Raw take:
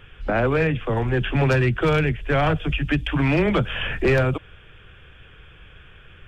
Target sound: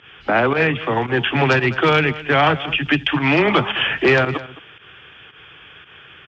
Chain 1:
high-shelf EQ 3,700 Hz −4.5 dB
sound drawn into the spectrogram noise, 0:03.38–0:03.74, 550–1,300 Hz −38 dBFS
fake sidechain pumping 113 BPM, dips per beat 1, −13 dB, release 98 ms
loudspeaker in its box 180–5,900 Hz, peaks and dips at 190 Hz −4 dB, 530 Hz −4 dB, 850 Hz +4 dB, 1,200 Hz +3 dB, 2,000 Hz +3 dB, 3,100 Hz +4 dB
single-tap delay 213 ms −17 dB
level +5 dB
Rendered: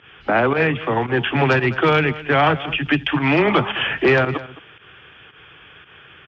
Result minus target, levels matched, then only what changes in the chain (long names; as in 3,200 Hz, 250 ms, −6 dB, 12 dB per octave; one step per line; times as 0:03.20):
8,000 Hz band −5.0 dB
change: high-shelf EQ 3,700 Hz +3.5 dB